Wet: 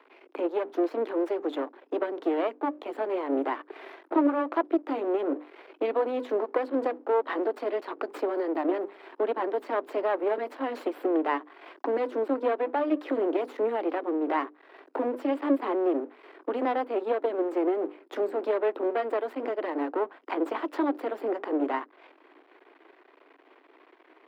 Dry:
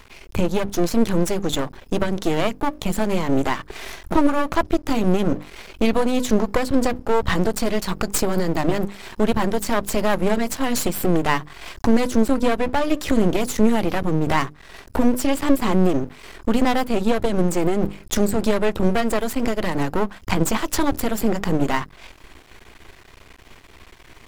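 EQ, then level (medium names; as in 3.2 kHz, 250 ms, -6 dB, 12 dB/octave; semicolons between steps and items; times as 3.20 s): steep high-pass 280 Hz 72 dB/octave; distance through air 420 m; peaking EQ 3.7 kHz -6 dB 2.8 oct; -2.5 dB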